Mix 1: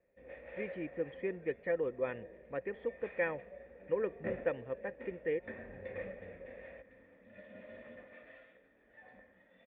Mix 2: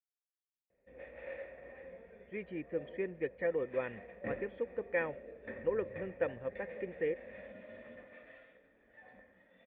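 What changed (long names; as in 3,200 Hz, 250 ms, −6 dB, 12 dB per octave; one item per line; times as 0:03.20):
speech: entry +1.75 s
first sound: entry +0.70 s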